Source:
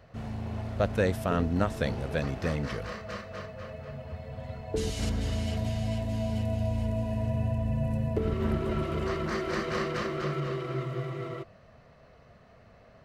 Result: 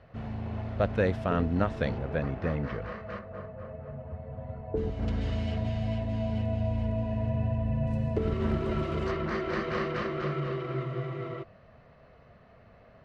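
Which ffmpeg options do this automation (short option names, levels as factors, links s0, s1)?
-af "asetnsamples=n=441:p=0,asendcmd='1.98 lowpass f 2000;3.19 lowpass f 1200;5.08 lowpass f 3100;7.87 lowpass f 6100;9.11 lowpass f 3400',lowpass=3300"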